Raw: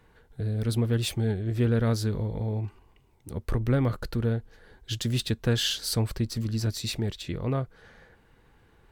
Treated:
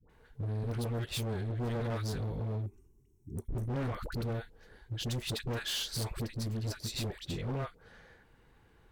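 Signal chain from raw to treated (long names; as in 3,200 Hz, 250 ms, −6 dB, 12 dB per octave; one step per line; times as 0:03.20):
gain on a spectral selection 0:02.52–0:03.65, 440–5,300 Hz −21 dB
all-pass dispersion highs, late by 98 ms, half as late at 730 Hz
gain into a clipping stage and back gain 28.5 dB
level −3.5 dB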